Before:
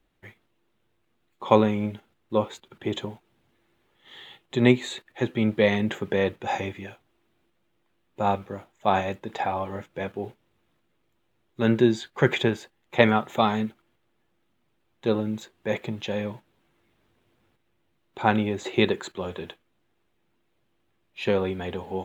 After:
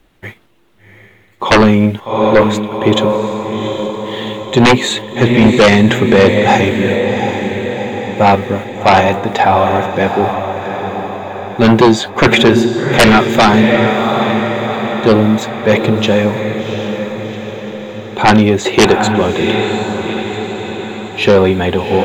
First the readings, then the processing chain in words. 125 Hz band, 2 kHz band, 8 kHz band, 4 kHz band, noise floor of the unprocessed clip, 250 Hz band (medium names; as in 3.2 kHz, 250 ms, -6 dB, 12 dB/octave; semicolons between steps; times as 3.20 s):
+15.0 dB, +16.5 dB, no reading, +17.5 dB, -71 dBFS, +15.5 dB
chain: echo that smears into a reverb 747 ms, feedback 57%, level -8.5 dB; sine folder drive 14 dB, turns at -2 dBFS